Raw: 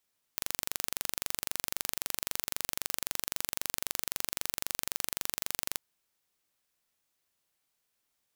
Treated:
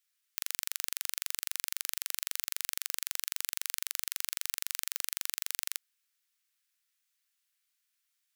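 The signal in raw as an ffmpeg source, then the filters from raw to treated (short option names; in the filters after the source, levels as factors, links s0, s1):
-f lavfi -i "aevalsrc='0.631*eq(mod(n,1853),0)':d=5.41:s=44100"
-af "highpass=f=1400:w=0.5412,highpass=f=1400:w=1.3066"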